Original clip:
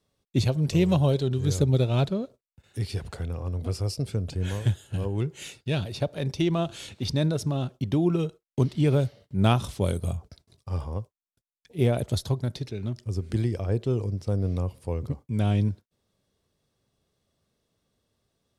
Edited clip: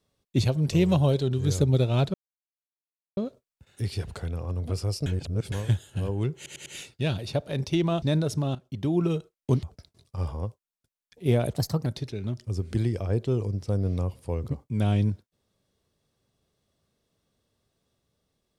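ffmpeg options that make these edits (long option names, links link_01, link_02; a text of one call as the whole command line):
ffmpeg -i in.wav -filter_complex "[0:a]asplit=12[link_01][link_02][link_03][link_04][link_05][link_06][link_07][link_08][link_09][link_10][link_11][link_12];[link_01]atrim=end=2.14,asetpts=PTS-STARTPTS,afade=type=out:start_time=2.136:duration=0.004:curve=hsin,apad=pad_dur=1.03[link_13];[link_02]atrim=start=2.14:end=4.032,asetpts=PTS-STARTPTS,afade=type=in:duration=0.004:curve=hsin[link_14];[link_03]atrim=start=4.028:end=4.492,asetpts=PTS-STARTPTS,areverse[link_15];[link_04]atrim=start=4.488:end=5.432[link_16];[link_05]atrim=start=5.328:end=5.432[link_17];[link_06]atrim=start=5.328:end=5.432[link_18];[link_07]atrim=start=5.328:end=6.692[link_19];[link_08]atrim=start=7.108:end=7.64,asetpts=PTS-STARTPTS,afade=type=out:start_time=0.528:duration=0.004:curve=hsin:silence=0.223872[link_20];[link_09]atrim=start=7.64:end=8.722,asetpts=PTS-STARTPTS,afade=type=in:duration=0.51:silence=0.223872[link_21];[link_10]atrim=start=10.158:end=12.094[link_22];[link_11]atrim=start=12.09:end=12.45,asetpts=PTS-STARTPTS,asetrate=52920,aresample=44100[link_23];[link_12]atrim=start=12.446[link_24];[link_13][link_14]concat=n=2:v=0:a=1[link_25];[link_25][link_15]acrossfade=duration=0.004:curve1=hsin:curve2=hsin[link_26];[link_26][link_16]acrossfade=duration=0.004:curve1=hsin:curve2=hsin[link_27];[link_27][link_17]acrossfade=duration=0.004:curve1=hsin:curve2=hsin[link_28];[link_28][link_18]acrossfade=duration=0.004:curve1=hsin:curve2=hsin[link_29];[link_29][link_19]acrossfade=duration=0.004:curve1=hsin:curve2=hsin[link_30];[link_20][link_21]concat=n=2:v=0:a=1[link_31];[link_30][link_31]acrossfade=duration=0.004:curve1=hsin:curve2=hsin[link_32];[link_32][link_22]acrossfade=duration=0.004:curve1=hsin:curve2=hsin[link_33];[link_33][link_23]acrossfade=duration=0.004:curve1=hsin:curve2=hsin[link_34];[link_34][link_24]acrossfade=duration=0.004:curve1=hsin:curve2=hsin" out.wav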